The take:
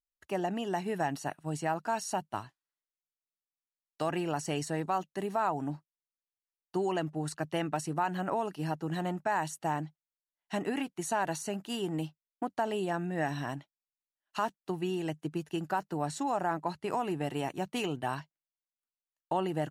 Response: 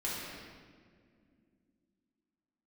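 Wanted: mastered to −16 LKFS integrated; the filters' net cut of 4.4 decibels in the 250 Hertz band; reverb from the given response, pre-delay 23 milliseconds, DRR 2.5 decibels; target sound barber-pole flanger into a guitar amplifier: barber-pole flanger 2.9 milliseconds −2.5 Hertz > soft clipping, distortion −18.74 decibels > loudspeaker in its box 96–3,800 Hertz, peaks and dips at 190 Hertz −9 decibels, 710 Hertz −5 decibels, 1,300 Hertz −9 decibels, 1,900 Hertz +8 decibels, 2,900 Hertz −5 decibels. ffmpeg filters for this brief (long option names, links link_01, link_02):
-filter_complex "[0:a]equalizer=frequency=250:width_type=o:gain=-3.5,asplit=2[link_01][link_02];[1:a]atrim=start_sample=2205,adelay=23[link_03];[link_02][link_03]afir=irnorm=-1:irlink=0,volume=-7.5dB[link_04];[link_01][link_04]amix=inputs=2:normalize=0,asplit=2[link_05][link_06];[link_06]adelay=2.9,afreqshift=-2.5[link_07];[link_05][link_07]amix=inputs=2:normalize=1,asoftclip=threshold=-25.5dB,highpass=96,equalizer=frequency=190:width_type=q:width=4:gain=-9,equalizer=frequency=710:width_type=q:width=4:gain=-5,equalizer=frequency=1300:width_type=q:width=4:gain=-9,equalizer=frequency=1900:width_type=q:width=4:gain=8,equalizer=frequency=2900:width_type=q:width=4:gain=-5,lowpass=frequency=3800:width=0.5412,lowpass=frequency=3800:width=1.3066,volume=23.5dB"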